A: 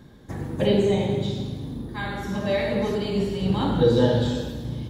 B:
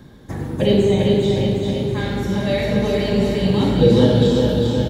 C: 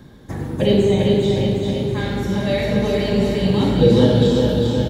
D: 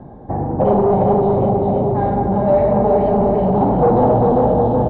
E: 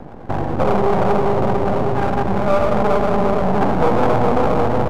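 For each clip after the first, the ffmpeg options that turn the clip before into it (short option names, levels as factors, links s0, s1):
-filter_complex "[0:a]acrossover=split=710|1800[s0][s1][s2];[s1]acompressor=threshold=0.00708:ratio=6[s3];[s0][s3][s2]amix=inputs=3:normalize=0,aecho=1:1:400|760|1084|1376|1638:0.631|0.398|0.251|0.158|0.1,volume=1.78"
-af anull
-af "asoftclip=type=tanh:threshold=0.112,lowpass=f=770:t=q:w=4.9,volume=1.78"
-filter_complex "[0:a]asplit=2[s0][s1];[s1]acompressor=threshold=0.0794:ratio=6,volume=0.891[s2];[s0][s2]amix=inputs=2:normalize=0,aeval=exprs='max(val(0),0)':c=same"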